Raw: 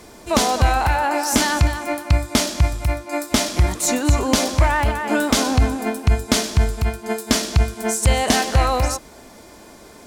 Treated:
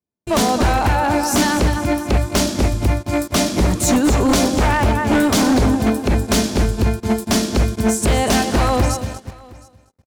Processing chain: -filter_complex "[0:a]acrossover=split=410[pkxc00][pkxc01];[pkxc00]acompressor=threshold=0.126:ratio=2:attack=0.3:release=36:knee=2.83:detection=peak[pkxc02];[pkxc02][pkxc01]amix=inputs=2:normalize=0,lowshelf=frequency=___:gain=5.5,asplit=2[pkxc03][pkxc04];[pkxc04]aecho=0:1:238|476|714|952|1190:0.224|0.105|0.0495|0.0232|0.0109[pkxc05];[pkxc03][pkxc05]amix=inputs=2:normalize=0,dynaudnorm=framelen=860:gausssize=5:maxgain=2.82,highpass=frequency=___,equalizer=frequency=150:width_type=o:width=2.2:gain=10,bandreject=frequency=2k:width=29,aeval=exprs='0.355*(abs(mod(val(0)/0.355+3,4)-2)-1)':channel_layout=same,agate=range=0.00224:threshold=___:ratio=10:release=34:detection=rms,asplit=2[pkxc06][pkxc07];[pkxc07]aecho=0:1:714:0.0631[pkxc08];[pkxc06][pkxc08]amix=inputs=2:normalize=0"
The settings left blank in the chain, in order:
210, 63, 0.0316